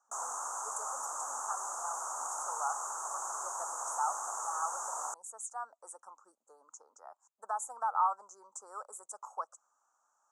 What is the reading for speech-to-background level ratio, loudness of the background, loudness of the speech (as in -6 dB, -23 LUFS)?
-2.5 dB, -37.5 LUFS, -40.0 LUFS